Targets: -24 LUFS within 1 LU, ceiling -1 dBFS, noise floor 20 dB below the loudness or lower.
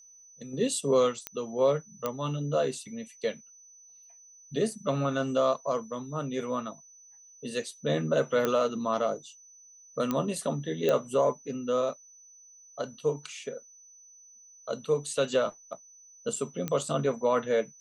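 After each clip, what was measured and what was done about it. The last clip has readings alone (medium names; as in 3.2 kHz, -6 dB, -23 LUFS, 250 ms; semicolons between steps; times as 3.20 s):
clicks found 6; steady tone 6 kHz; tone level -52 dBFS; loudness -30.0 LUFS; peak level -11.5 dBFS; loudness target -24.0 LUFS
-> de-click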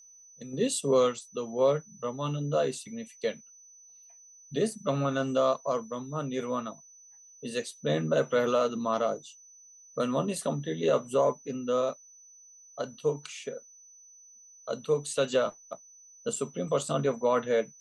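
clicks found 0; steady tone 6 kHz; tone level -52 dBFS
-> band-stop 6 kHz, Q 30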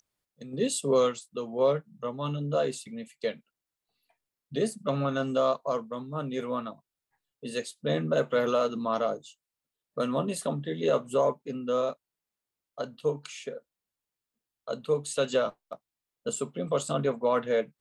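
steady tone not found; loudness -30.0 LUFS; peak level -13.0 dBFS; loudness target -24.0 LUFS
-> trim +6 dB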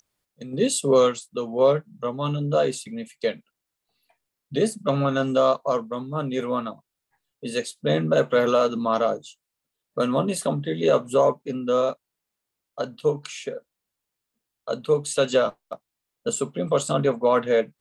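loudness -24.0 LUFS; peak level -7.0 dBFS; noise floor -84 dBFS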